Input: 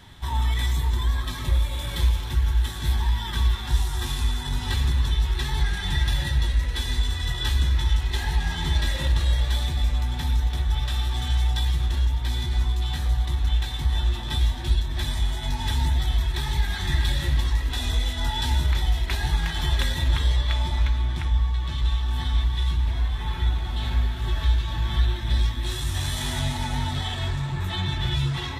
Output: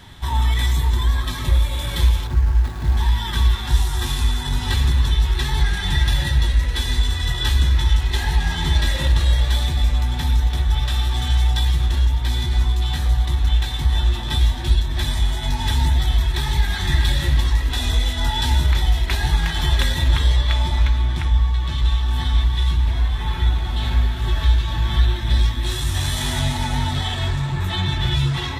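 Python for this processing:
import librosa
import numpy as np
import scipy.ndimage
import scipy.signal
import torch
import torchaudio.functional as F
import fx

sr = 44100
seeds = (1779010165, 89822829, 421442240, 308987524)

y = fx.median_filter(x, sr, points=15, at=(2.27, 2.97))
y = y * librosa.db_to_amplitude(5.0)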